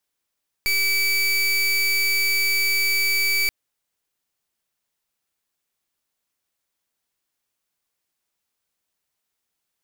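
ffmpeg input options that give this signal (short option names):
-f lavfi -i "aevalsrc='0.0944*(2*lt(mod(2300*t,1),0.29)-1)':d=2.83:s=44100"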